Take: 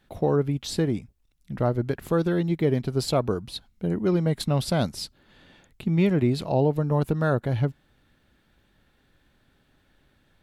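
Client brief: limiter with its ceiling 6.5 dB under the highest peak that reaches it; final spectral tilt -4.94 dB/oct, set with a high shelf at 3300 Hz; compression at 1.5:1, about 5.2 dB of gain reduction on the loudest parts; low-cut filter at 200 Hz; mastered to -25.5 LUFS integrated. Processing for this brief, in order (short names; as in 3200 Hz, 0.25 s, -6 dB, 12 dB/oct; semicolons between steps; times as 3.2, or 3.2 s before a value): HPF 200 Hz; high shelf 3300 Hz +4.5 dB; compressor 1.5:1, threshold -33 dBFS; gain +8.5 dB; limiter -14 dBFS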